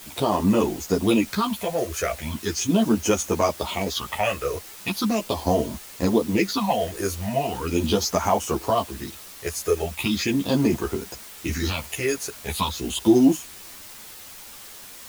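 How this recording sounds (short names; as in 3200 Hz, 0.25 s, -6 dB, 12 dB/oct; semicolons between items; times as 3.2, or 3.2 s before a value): phasing stages 6, 0.39 Hz, lowest notch 230–4000 Hz; a quantiser's noise floor 8-bit, dither triangular; a shimmering, thickened sound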